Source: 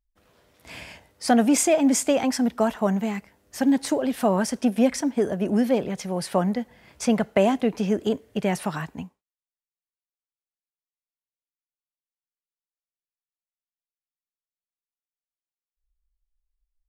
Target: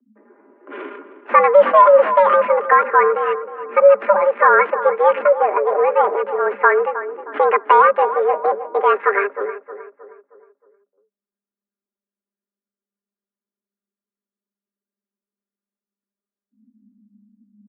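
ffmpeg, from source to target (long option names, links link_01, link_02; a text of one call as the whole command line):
ffmpeg -i in.wav -filter_complex "[0:a]equalizer=frequency=450:width=1.3:gain=-13.5,aecho=1:1:6.4:0.57,acrossover=split=260[link_01][link_02];[link_01]acompressor=threshold=-43dB:ratio=6[link_03];[link_03][link_02]amix=inputs=2:normalize=0,atempo=0.74,adynamicsmooth=sensitivity=7.5:basefreq=670,asetrate=56889,aresample=44100,afreqshift=350,asplit=2[link_04][link_05];[link_05]adelay=313,lowpass=frequency=1500:poles=1,volume=-11.5dB,asplit=2[link_06][link_07];[link_07]adelay=313,lowpass=frequency=1500:poles=1,volume=0.49,asplit=2[link_08][link_09];[link_09]adelay=313,lowpass=frequency=1500:poles=1,volume=0.49,asplit=2[link_10][link_11];[link_11]adelay=313,lowpass=frequency=1500:poles=1,volume=0.49,asplit=2[link_12][link_13];[link_13]adelay=313,lowpass=frequency=1500:poles=1,volume=0.49[link_14];[link_04][link_06][link_08][link_10][link_12][link_14]amix=inputs=6:normalize=0,highpass=frequency=180:width_type=q:width=0.5412,highpass=frequency=180:width_type=q:width=1.307,lowpass=frequency=2100:width_type=q:width=0.5176,lowpass=frequency=2100:width_type=q:width=0.7071,lowpass=frequency=2100:width_type=q:width=1.932,afreqshift=-150,alimiter=level_in=18dB:limit=-1dB:release=50:level=0:latency=1,volume=-1dB" out.wav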